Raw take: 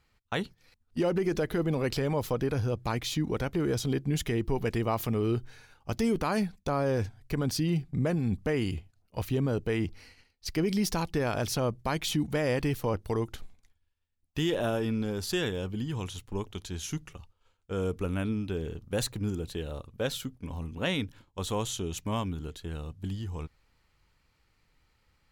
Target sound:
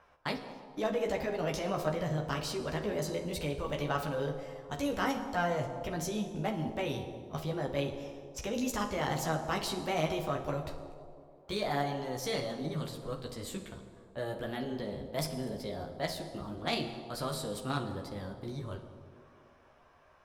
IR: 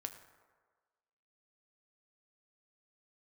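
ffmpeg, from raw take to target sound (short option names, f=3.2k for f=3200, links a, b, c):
-filter_complex "[0:a]equalizer=f=6.7k:w=1.3:g=-4,acrossover=split=450|1000[a][b][c];[a]alimiter=level_in=4.5dB:limit=-24dB:level=0:latency=1,volume=-4.5dB[d];[b]acompressor=mode=upward:threshold=-43dB:ratio=2.5[e];[d][e][c]amix=inputs=3:normalize=0,flanger=delay=15.5:depth=3.2:speed=1.2,asplit=2[f][g];[g]acrusher=bits=3:mix=0:aa=0.5,volume=-11dB[h];[f][h]amix=inputs=2:normalize=0,asetrate=55125,aresample=44100[i];[1:a]atrim=start_sample=2205,asetrate=23814,aresample=44100[j];[i][j]afir=irnorm=-1:irlink=0"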